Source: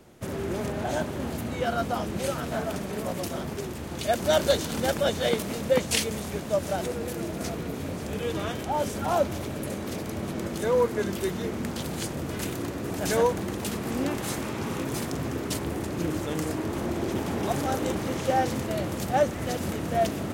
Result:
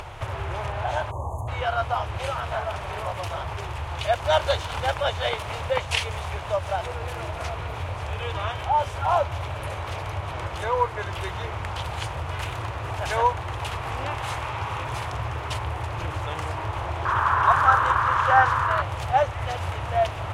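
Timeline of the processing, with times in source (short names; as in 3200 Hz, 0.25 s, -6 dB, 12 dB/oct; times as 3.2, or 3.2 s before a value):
1.11–1.48 spectral delete 1200–6200 Hz
17.05–18.82 band shelf 1300 Hz +15.5 dB 1 oct
whole clip: EQ curve 110 Hz 0 dB, 210 Hz -30 dB, 940 Hz +3 dB, 3100 Hz -13 dB, 4500 Hz -21 dB, 7700 Hz -26 dB; upward compressor, threshold -32 dBFS; band shelf 5100 Hz +10 dB 2.5 oct; gain +6.5 dB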